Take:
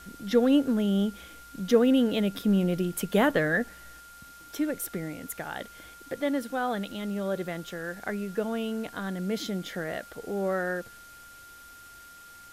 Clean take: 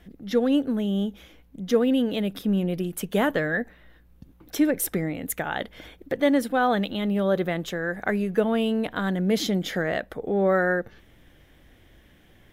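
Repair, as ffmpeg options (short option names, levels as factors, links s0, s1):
-af "adeclick=t=4,bandreject=f=1400:w=30,afwtdn=0.0022,asetnsamples=n=441:p=0,asendcmd='4 volume volume 7.5dB',volume=1"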